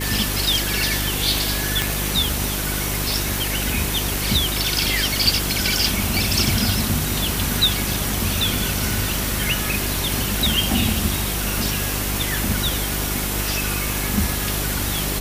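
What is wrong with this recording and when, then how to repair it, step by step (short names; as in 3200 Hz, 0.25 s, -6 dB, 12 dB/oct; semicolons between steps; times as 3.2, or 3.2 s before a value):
hum 50 Hz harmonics 8 -27 dBFS
1.82 pop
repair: de-click; de-hum 50 Hz, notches 8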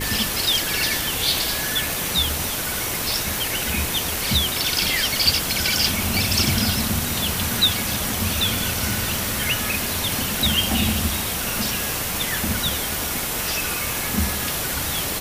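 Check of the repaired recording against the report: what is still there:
none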